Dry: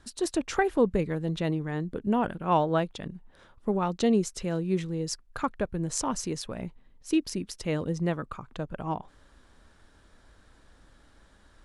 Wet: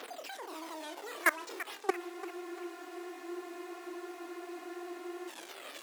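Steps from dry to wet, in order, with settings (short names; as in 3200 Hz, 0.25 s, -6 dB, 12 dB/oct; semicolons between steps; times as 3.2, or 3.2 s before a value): delta modulation 32 kbps, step -28 dBFS; decimation with a swept rate 9×, swing 160% 1 Hz; flutter echo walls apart 9.8 m, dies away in 0.37 s; speed mistake 7.5 ips tape played at 15 ips; phaser 0.22 Hz, delay 3.2 ms, feedback 47%; level quantiser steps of 21 dB; steep high-pass 280 Hz 36 dB/oct; spectral freeze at 1.98, 3.31 s; warbling echo 0.337 s, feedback 46%, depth 165 cents, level -14 dB; gain -1 dB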